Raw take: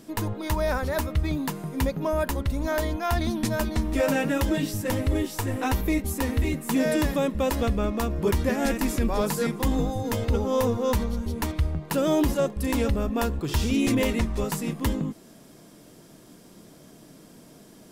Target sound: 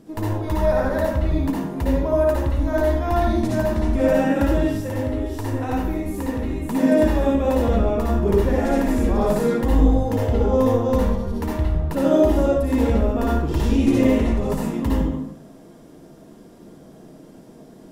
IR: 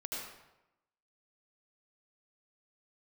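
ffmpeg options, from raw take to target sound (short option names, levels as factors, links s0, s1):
-filter_complex "[0:a]tiltshelf=f=1400:g=6,asettb=1/sr,asplit=3[s0][s1][s2];[s0]atrim=end=4.594[s3];[s1]atrim=start=4.59:end=6.62,asetpts=PTS-STARTPTS,afade=t=in:d=0.004:c=qsin,afade=t=out:st=2.026:d=0.004:c=qsin,acompressor=threshold=0.0891:ratio=6[s4];[s2]atrim=start=6.616[s5];[s3][s4]acrossfade=d=0.004:c1=hsin:c2=qsin[s6];[s6][s5]acrossfade=d=0.004:c1=qsin:c2=hsin[s7];[1:a]atrim=start_sample=2205,asetrate=57330,aresample=44100[s8];[s7][s8]afir=irnorm=-1:irlink=0,volume=1.33"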